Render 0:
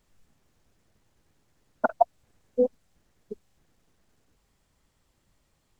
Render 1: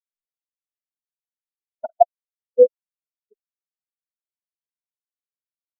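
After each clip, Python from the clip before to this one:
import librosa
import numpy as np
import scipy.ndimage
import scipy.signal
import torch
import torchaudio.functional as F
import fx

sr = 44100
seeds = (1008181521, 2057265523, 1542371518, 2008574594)

y = fx.peak_eq(x, sr, hz=630.0, db=5.5, octaves=2.7)
y = fx.spectral_expand(y, sr, expansion=2.5)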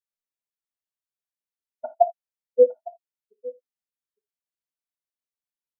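y = x + 10.0 ** (-19.5 / 20.0) * np.pad(x, (int(858 * sr / 1000.0), 0))[:len(x)]
y = fx.rev_gated(y, sr, seeds[0], gate_ms=100, shape='falling', drr_db=8.5)
y = y * 10.0 ** (-3.5 / 20.0)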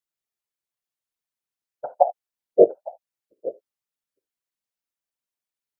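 y = fx.whisperise(x, sr, seeds[1])
y = y * 10.0 ** (2.5 / 20.0)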